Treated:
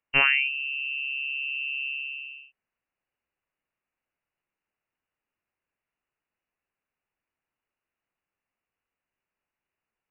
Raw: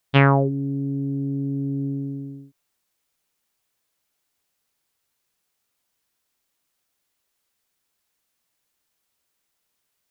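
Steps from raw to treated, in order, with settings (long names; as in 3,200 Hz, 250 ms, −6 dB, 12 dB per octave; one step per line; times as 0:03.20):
voice inversion scrambler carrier 2,900 Hz
level −6 dB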